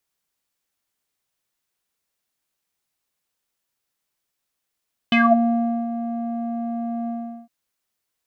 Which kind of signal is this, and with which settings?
synth note square A#3 12 dB/oct, low-pass 560 Hz, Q 8.1, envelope 2.5 oct, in 0.23 s, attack 2.5 ms, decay 0.75 s, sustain -11 dB, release 0.40 s, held 1.96 s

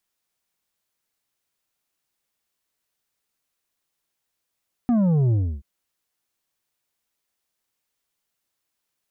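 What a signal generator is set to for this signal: sub drop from 250 Hz, over 0.73 s, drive 7 dB, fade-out 0.30 s, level -17 dB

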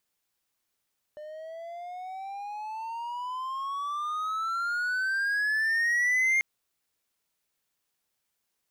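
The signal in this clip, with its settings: gliding synth tone triangle, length 5.24 s, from 599 Hz, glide +22 st, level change +18 dB, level -19 dB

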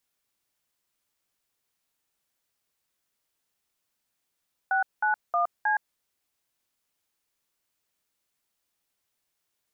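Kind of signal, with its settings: DTMF "691C", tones 0.117 s, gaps 0.197 s, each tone -24 dBFS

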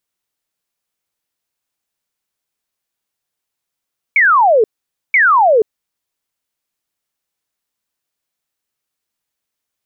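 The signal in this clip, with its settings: burst of laser zaps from 2300 Hz, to 410 Hz, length 0.48 s sine, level -7 dB, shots 2, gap 0.50 s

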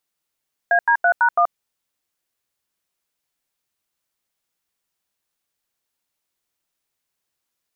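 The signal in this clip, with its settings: DTMF "AD3#1", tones 80 ms, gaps 86 ms, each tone -15 dBFS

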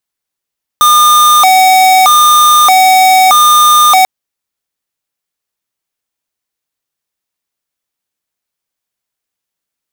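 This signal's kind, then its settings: siren hi-lo 752–1210 Hz 0.8/s square -5.5 dBFS 3.24 s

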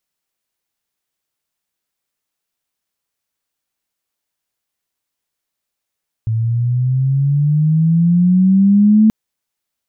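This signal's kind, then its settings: chirp logarithmic 110 Hz -> 220 Hz -14 dBFS -> -6 dBFS 2.83 s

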